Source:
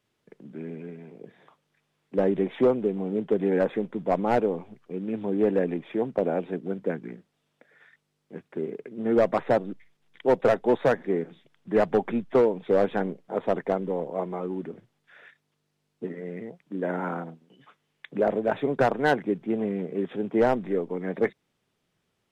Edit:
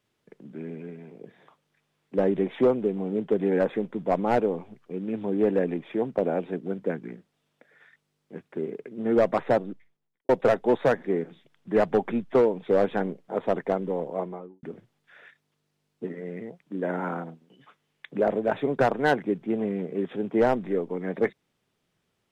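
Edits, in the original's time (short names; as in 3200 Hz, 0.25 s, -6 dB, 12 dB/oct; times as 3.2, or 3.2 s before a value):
9.53–10.29 studio fade out
14.13–14.63 studio fade out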